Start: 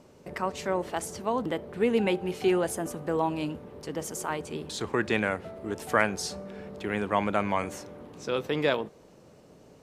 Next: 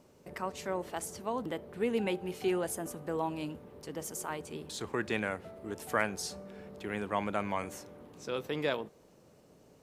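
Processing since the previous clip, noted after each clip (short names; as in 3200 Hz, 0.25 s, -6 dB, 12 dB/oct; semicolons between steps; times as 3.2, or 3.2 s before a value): high shelf 11000 Hz +10.5 dB; gain -6.5 dB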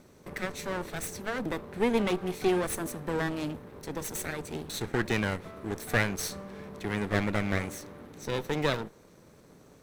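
minimum comb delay 0.51 ms; gain +6 dB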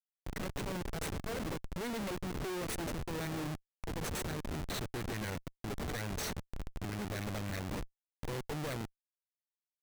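Schmitt trigger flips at -35.5 dBFS; gain -5 dB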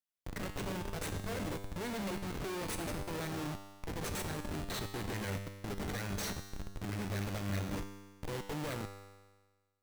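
resonator 99 Hz, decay 1.4 s, harmonics all, mix 80%; gain +11.5 dB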